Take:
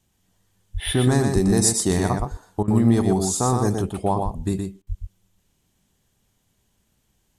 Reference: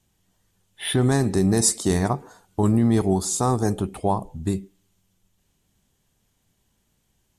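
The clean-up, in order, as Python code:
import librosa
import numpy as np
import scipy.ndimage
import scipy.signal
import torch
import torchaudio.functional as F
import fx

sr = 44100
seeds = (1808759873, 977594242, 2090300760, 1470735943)

y = fx.fix_deplosive(x, sr, at_s=(0.73, 1.34, 2.18, 4.24, 4.88))
y = fx.fix_interpolate(y, sr, at_s=(2.63, 4.82), length_ms=47.0)
y = fx.fix_echo_inverse(y, sr, delay_ms=120, level_db=-5.0)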